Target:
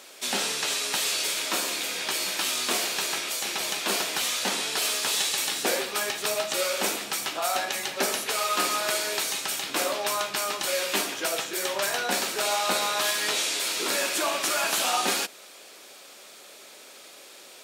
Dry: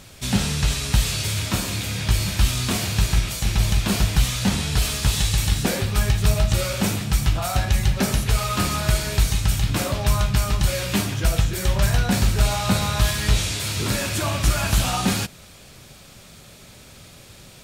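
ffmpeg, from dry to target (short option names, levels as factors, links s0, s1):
-af "highpass=f=340:w=0.5412,highpass=f=340:w=1.3066"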